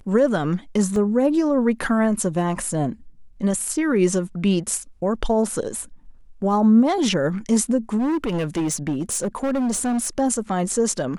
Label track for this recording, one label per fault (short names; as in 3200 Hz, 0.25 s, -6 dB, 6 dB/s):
0.960000	0.960000	gap 2.1 ms
2.560000	2.560000	gap 3.8 ms
7.980000	10.080000	clipped -19 dBFS